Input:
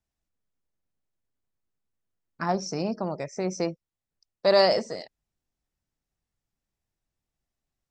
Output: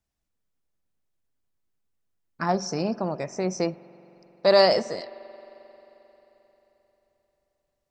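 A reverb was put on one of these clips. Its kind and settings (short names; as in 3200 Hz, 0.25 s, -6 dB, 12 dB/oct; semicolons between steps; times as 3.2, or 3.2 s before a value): spring tank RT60 4 s, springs 44 ms, chirp 65 ms, DRR 18 dB; gain +2 dB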